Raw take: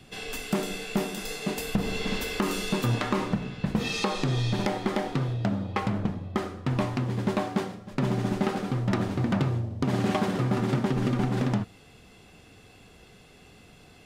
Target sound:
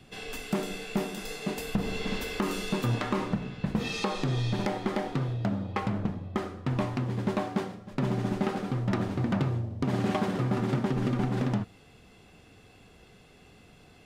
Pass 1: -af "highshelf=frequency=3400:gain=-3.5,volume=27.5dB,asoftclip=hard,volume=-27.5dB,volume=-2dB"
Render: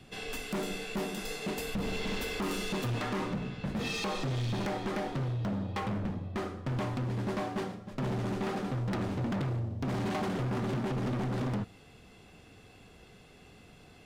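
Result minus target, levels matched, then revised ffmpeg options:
gain into a clipping stage and back: distortion +25 dB
-af "highshelf=frequency=3400:gain=-3.5,volume=16dB,asoftclip=hard,volume=-16dB,volume=-2dB"

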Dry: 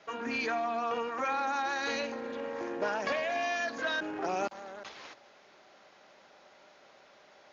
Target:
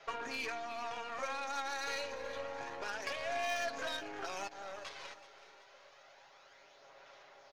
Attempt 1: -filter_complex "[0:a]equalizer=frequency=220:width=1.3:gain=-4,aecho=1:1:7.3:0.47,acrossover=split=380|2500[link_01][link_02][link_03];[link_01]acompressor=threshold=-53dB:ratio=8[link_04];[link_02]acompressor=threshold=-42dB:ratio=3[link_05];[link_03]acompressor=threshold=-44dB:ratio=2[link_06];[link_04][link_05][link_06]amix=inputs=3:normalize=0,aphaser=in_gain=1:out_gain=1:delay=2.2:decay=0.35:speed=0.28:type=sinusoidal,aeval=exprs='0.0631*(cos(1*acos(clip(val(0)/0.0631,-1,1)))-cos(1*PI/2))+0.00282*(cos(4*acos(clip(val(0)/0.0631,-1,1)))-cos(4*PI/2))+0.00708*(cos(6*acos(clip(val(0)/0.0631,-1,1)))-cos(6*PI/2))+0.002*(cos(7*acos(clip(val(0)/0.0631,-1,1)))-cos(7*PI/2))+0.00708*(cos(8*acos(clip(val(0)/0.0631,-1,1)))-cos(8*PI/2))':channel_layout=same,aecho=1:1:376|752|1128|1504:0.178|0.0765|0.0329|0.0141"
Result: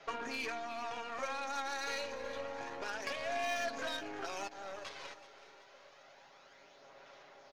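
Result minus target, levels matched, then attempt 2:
250 Hz band +3.0 dB
-filter_complex "[0:a]equalizer=frequency=220:width=1.3:gain=-14.5,aecho=1:1:7.3:0.47,acrossover=split=380|2500[link_01][link_02][link_03];[link_01]acompressor=threshold=-53dB:ratio=8[link_04];[link_02]acompressor=threshold=-42dB:ratio=3[link_05];[link_03]acompressor=threshold=-44dB:ratio=2[link_06];[link_04][link_05][link_06]amix=inputs=3:normalize=0,aphaser=in_gain=1:out_gain=1:delay=2.2:decay=0.35:speed=0.28:type=sinusoidal,aeval=exprs='0.0631*(cos(1*acos(clip(val(0)/0.0631,-1,1)))-cos(1*PI/2))+0.00282*(cos(4*acos(clip(val(0)/0.0631,-1,1)))-cos(4*PI/2))+0.00708*(cos(6*acos(clip(val(0)/0.0631,-1,1)))-cos(6*PI/2))+0.002*(cos(7*acos(clip(val(0)/0.0631,-1,1)))-cos(7*PI/2))+0.00708*(cos(8*acos(clip(val(0)/0.0631,-1,1)))-cos(8*PI/2))':channel_layout=same,aecho=1:1:376|752|1128|1504:0.178|0.0765|0.0329|0.0141"

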